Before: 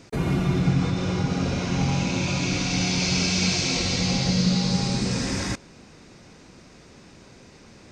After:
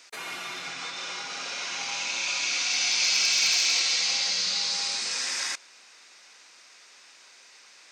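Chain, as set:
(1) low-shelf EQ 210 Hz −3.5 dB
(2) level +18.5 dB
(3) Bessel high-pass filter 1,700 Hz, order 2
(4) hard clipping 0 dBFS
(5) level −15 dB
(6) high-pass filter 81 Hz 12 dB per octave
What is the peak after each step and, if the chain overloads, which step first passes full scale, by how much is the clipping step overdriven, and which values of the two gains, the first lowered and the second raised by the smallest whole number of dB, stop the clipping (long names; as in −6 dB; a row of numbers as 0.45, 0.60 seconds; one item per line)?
−11.0, +7.5, +4.0, 0.0, −15.0, −14.5 dBFS
step 2, 4.0 dB
step 2 +14.5 dB, step 5 −11 dB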